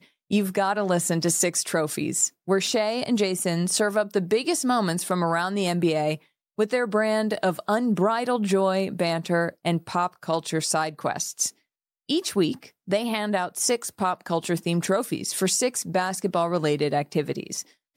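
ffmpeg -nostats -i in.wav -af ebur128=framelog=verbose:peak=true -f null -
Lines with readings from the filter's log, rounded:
Integrated loudness:
  I:         -24.7 LUFS
  Threshold: -34.8 LUFS
Loudness range:
  LRA:         2.9 LU
  Threshold: -44.8 LUFS
  LRA low:   -26.5 LUFS
  LRA high:  -23.7 LUFS
True peak:
  Peak:      -10.0 dBFS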